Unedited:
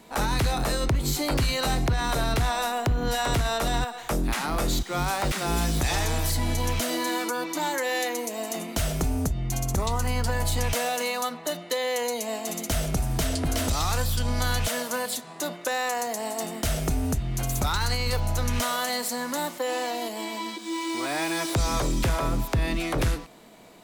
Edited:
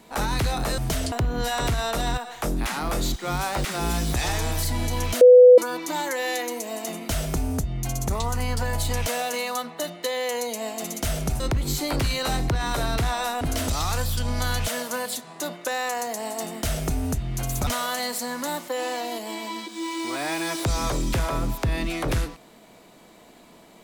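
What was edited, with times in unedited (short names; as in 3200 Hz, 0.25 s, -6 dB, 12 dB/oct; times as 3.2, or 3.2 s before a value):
0.78–2.79 swap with 13.07–13.41
6.88–7.25 bleep 498 Hz -6.5 dBFS
17.67–18.57 cut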